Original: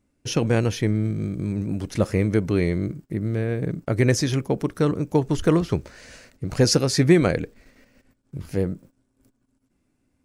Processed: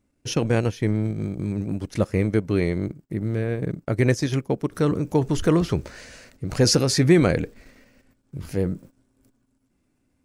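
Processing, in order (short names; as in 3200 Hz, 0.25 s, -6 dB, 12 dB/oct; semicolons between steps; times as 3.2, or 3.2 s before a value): transient shaper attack -1 dB, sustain -9 dB, from 4.71 s sustain +4 dB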